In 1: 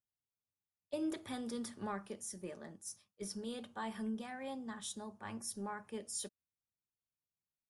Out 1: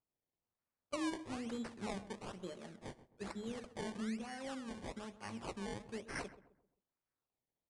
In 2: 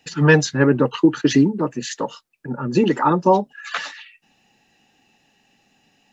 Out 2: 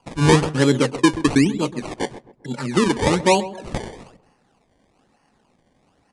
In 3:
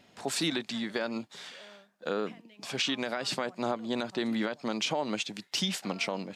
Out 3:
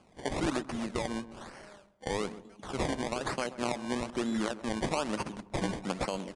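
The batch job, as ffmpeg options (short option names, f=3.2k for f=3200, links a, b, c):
-filter_complex "[0:a]acrusher=samples=23:mix=1:aa=0.000001:lfo=1:lforange=23:lforate=1.1,aresample=22050,aresample=44100,asplit=2[a][b];[b]adelay=131,lowpass=f=1.2k:p=1,volume=-14dB,asplit=2[c][d];[d]adelay=131,lowpass=f=1.2k:p=1,volume=0.39,asplit=2[e][f];[f]adelay=131,lowpass=f=1.2k:p=1,volume=0.39,asplit=2[g][h];[h]adelay=131,lowpass=f=1.2k:p=1,volume=0.39[i];[a][c][e][g][i]amix=inputs=5:normalize=0,volume=-1dB"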